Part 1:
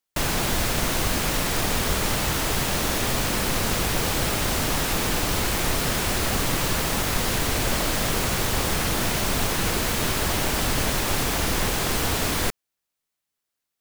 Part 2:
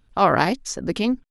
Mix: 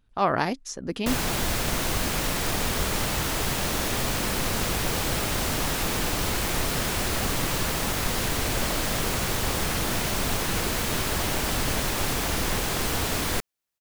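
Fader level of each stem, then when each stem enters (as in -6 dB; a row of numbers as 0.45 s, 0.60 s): -2.5 dB, -6.0 dB; 0.90 s, 0.00 s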